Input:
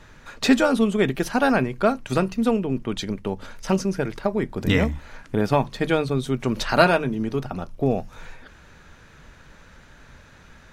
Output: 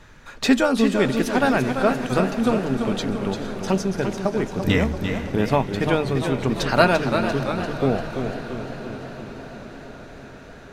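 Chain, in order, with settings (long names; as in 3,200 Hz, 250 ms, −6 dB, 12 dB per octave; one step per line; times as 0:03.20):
on a send: feedback delay with all-pass diffusion 455 ms, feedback 75%, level −14 dB
on the sum: feedback echo with a swinging delay time 342 ms, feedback 55%, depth 95 cents, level −7.5 dB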